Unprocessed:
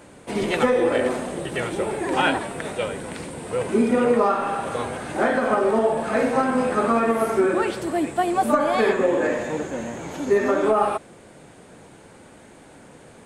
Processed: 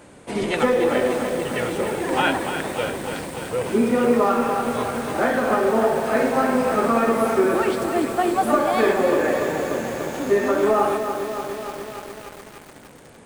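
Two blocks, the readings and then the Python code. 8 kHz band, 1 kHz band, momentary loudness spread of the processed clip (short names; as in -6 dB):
+2.5 dB, +1.0 dB, 11 LU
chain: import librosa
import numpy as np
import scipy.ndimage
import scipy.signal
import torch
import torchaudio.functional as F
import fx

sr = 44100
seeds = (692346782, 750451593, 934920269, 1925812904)

y = fx.echo_crushed(x, sr, ms=293, feedback_pct=80, bits=6, wet_db=-7.5)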